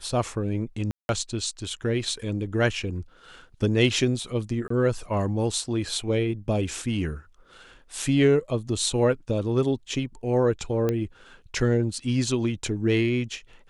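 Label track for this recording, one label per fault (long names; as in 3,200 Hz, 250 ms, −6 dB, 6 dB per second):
0.910000	1.090000	drop-out 181 ms
4.680000	4.700000	drop-out 24 ms
8.020000	8.020000	drop-out 2.7 ms
10.890000	10.890000	click −13 dBFS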